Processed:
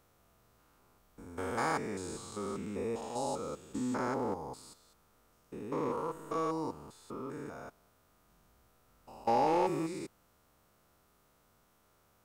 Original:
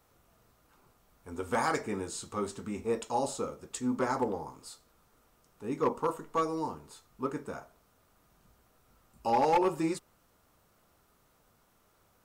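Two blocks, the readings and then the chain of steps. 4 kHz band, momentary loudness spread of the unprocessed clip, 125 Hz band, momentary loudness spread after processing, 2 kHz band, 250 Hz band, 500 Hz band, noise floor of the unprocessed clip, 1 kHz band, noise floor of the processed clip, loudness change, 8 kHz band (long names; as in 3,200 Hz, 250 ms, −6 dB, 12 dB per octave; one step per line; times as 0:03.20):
−3.5 dB, 16 LU, −1.5 dB, 18 LU, −3.0 dB, −2.5 dB, −3.0 dB, −68 dBFS, −3.0 dB, −69 dBFS, −3.0 dB, −4.5 dB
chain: spectrum averaged block by block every 200 ms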